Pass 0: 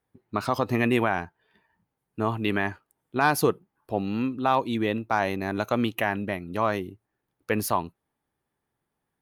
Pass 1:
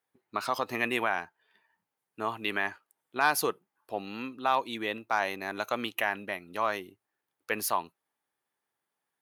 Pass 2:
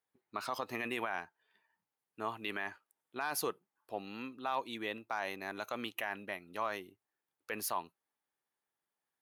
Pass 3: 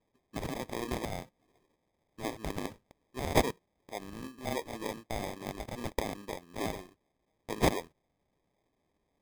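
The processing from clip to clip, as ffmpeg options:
-af "highpass=f=1000:p=1"
-af "alimiter=limit=0.126:level=0:latency=1:release=14,volume=0.501"
-af "crystalizer=i=3:c=0,acrusher=samples=31:mix=1:aa=0.000001"

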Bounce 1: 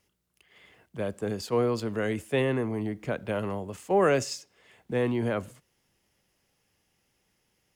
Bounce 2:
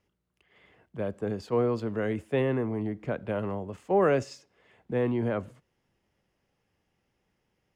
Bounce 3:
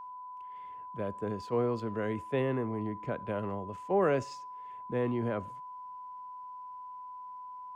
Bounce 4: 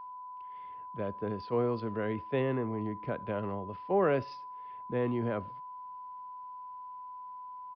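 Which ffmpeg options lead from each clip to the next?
-af "lowpass=f=1600:p=1"
-af "aeval=exprs='val(0)+0.0126*sin(2*PI*1000*n/s)':c=same,volume=0.631"
-af "aresample=11025,aresample=44100"

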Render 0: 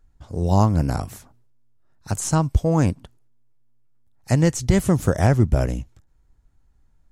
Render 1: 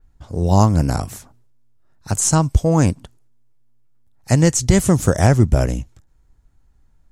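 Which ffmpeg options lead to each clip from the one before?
-af "adynamicequalizer=threshold=0.00631:dfrequency=7400:dqfactor=0.96:tfrequency=7400:tqfactor=0.96:attack=5:release=100:ratio=0.375:range=3.5:mode=boostabove:tftype=bell,volume=1.5"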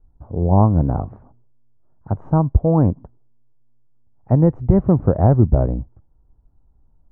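-af "lowpass=f=1000:w=0.5412,lowpass=f=1000:w=1.3066"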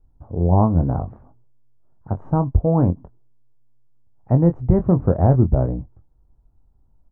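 -filter_complex "[0:a]asplit=2[s0][s1];[s1]adelay=23,volume=0.355[s2];[s0][s2]amix=inputs=2:normalize=0,volume=0.794"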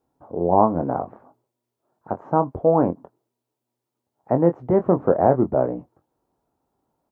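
-af "highpass=360,volume=1.88"

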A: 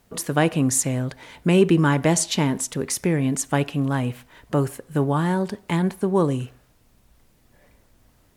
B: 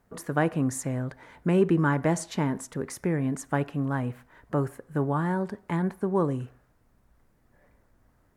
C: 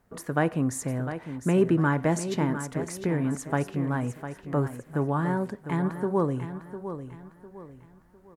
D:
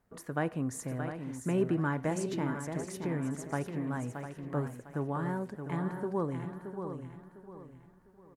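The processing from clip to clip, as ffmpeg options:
-af "highshelf=f=2200:t=q:w=1.5:g=-8,volume=0.531"
-af "aecho=1:1:703|1406|2109|2812:0.299|0.104|0.0366|0.0128"
-af "aecho=1:1:624:0.398,volume=0.422"

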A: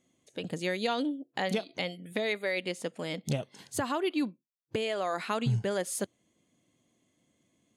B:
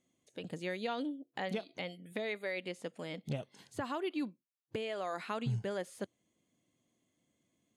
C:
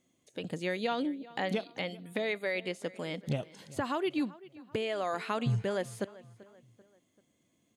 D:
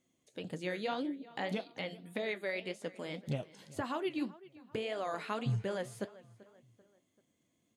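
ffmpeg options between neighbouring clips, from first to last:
-filter_complex "[0:a]acrossover=split=3600[s0][s1];[s1]acompressor=threshold=0.00398:ratio=4:attack=1:release=60[s2];[s0][s2]amix=inputs=2:normalize=0,volume=0.473"
-filter_complex "[0:a]asplit=2[s0][s1];[s1]adelay=388,lowpass=f=4300:p=1,volume=0.106,asplit=2[s2][s3];[s3]adelay=388,lowpass=f=4300:p=1,volume=0.44,asplit=2[s4][s5];[s5]adelay=388,lowpass=f=4300:p=1,volume=0.44[s6];[s0][s2][s4][s6]amix=inputs=4:normalize=0,volume=1.78"
-af "flanger=delay=6.9:depth=9.1:regen=-60:speed=1.8:shape=triangular"

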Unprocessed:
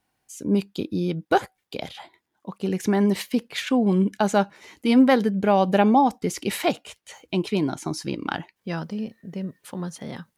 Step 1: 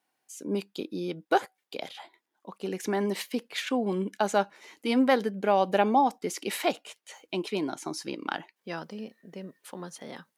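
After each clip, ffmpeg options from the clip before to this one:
-af "highpass=300,volume=0.668"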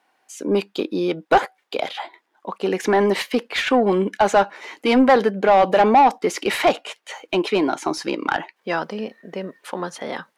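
-filter_complex "[0:a]asplit=2[s0][s1];[s1]highpass=f=720:p=1,volume=10,asoftclip=type=tanh:threshold=0.376[s2];[s0][s2]amix=inputs=2:normalize=0,lowpass=f=1500:p=1,volume=0.501,volume=1.68"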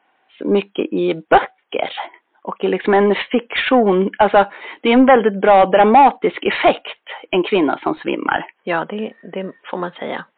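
-af "volume=1.68" -ar 8000 -c:a libmp3lame -b:a 48k

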